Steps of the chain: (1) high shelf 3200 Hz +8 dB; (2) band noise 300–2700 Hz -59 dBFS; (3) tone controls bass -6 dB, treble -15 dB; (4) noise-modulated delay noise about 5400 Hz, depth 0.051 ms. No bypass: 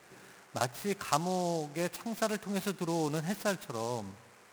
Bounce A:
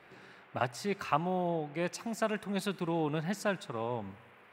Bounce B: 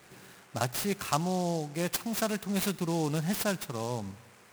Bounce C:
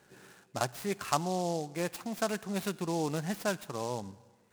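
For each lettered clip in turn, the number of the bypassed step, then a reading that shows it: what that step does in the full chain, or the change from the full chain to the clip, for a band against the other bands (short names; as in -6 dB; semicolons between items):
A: 4, 8 kHz band -7.0 dB; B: 3, 1 kHz band -3.5 dB; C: 2, momentary loudness spread change -3 LU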